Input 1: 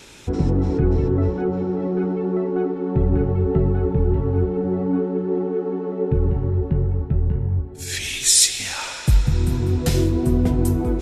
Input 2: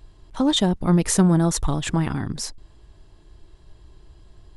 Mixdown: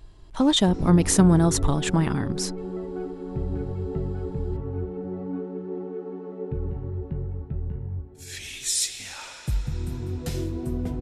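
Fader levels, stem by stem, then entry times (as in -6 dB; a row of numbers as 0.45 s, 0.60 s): -10.5 dB, 0.0 dB; 0.40 s, 0.00 s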